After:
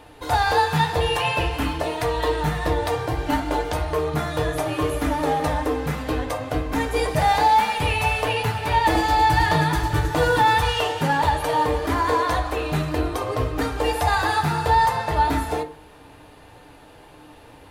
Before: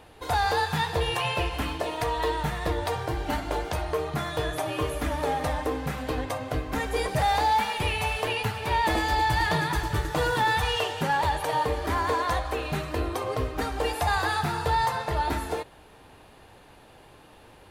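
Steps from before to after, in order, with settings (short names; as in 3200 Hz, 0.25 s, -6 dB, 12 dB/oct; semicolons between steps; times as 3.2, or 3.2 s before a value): FDN reverb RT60 0.39 s, low-frequency decay 1.2×, high-frequency decay 0.5×, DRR 4.5 dB; gain +3 dB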